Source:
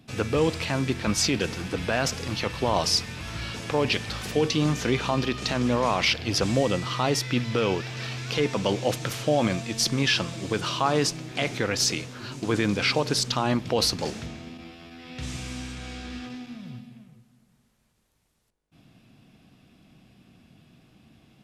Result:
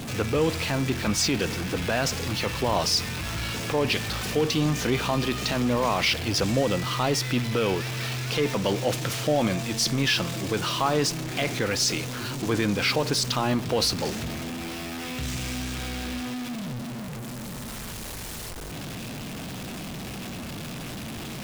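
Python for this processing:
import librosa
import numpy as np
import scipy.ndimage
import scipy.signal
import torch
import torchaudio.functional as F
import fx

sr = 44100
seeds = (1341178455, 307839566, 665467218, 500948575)

y = x + 0.5 * 10.0 ** (-28.0 / 20.0) * np.sign(x)
y = y * librosa.db_to_amplitude(-2.0)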